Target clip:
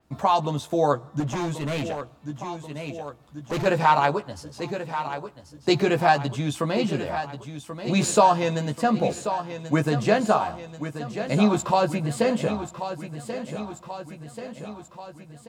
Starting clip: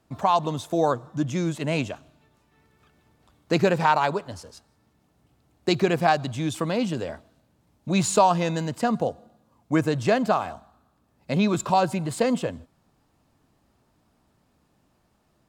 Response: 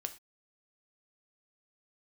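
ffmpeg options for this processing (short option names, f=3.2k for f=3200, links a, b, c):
-filter_complex "[0:a]asplit=2[a][b];[b]adelay=14,volume=-5.5dB[c];[a][c]amix=inputs=2:normalize=0,aecho=1:1:1085|2170|3255|4340|5425|6510|7595:0.299|0.173|0.1|0.0582|0.0338|0.0196|0.0114,asettb=1/sr,asplit=3[d][e][f];[d]atrim=end=1.204[g];[e]atrim=start=1.2:end=3.66,asetpts=PTS-STARTPTS,afade=t=in:d=0.004:c=qsin,afade=t=out:st=2.456:d=0.004:c=qsin,volume=24dB,asoftclip=hard,volume=-24dB[h];[f]atrim=start=3.656[i];[g][h]acrossfade=d=0.004:c1=hsin:c2=qsin[j];[j][i]acrossfade=d=0.004:c1=qsin:c2=hsin,adynamicequalizer=threshold=0.00631:dfrequency=4900:dqfactor=0.7:tfrequency=4900:tqfactor=0.7:attack=5:release=100:ratio=0.375:range=1.5:mode=cutabove:tftype=highshelf"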